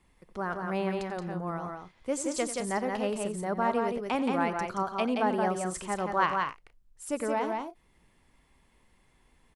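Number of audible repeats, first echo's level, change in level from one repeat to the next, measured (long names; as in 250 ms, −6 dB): 3, −14.0 dB, repeats not evenly spaced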